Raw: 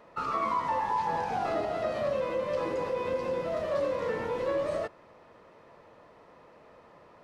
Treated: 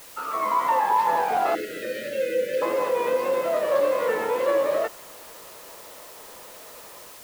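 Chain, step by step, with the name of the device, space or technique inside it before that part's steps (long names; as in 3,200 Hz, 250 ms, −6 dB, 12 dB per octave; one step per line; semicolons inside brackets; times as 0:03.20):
dictaphone (band-pass filter 360–3,900 Hz; automatic gain control gain up to 8.5 dB; tape wow and flutter; white noise bed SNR 21 dB)
0:01.55–0:02.62: Chebyshev band-stop filter 530–1,500 Hz, order 4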